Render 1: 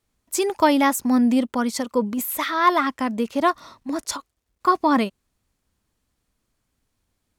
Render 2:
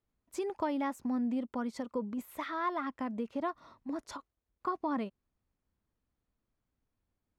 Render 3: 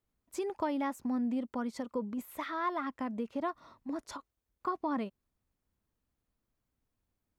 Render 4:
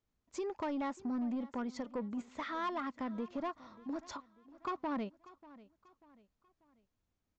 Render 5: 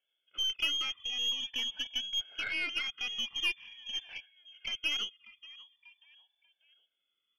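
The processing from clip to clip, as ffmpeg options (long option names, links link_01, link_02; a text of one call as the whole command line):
ffmpeg -i in.wav -af "lowpass=frequency=1400:poles=1,acompressor=threshold=-25dB:ratio=2,volume=-9dB" out.wav
ffmpeg -i in.wav -af "highshelf=frequency=10000:gain=4" out.wav
ffmpeg -i in.wav -af "aresample=16000,asoftclip=type=tanh:threshold=-30dB,aresample=44100,aecho=1:1:590|1180|1770:0.106|0.0434|0.0178,volume=-1dB" out.wav
ffmpeg -i in.wav -af "afftfilt=real='re*pow(10,19/40*sin(2*PI*(1.7*log(max(b,1)*sr/1024/100)/log(2)-(0.45)*(pts-256)/sr)))':imag='im*pow(10,19/40*sin(2*PI*(1.7*log(max(b,1)*sr/1024/100)/log(2)-(0.45)*(pts-256)/sr)))':win_size=1024:overlap=0.75,lowpass=frequency=3000:width_type=q:width=0.5098,lowpass=frequency=3000:width_type=q:width=0.6013,lowpass=frequency=3000:width_type=q:width=0.9,lowpass=frequency=3000:width_type=q:width=2.563,afreqshift=-3500,aeval=exprs='0.106*(cos(1*acos(clip(val(0)/0.106,-1,1)))-cos(1*PI/2))+0.00668*(cos(6*acos(clip(val(0)/0.106,-1,1)))-cos(6*PI/2))':channel_layout=same" out.wav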